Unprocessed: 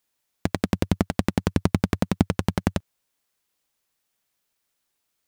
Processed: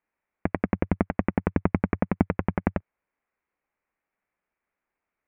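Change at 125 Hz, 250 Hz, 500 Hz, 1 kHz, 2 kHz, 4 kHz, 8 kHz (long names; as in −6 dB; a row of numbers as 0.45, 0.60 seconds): −3.5 dB, −1.5 dB, −0.5 dB, 0.0 dB, −1.0 dB, below −20 dB, below −40 dB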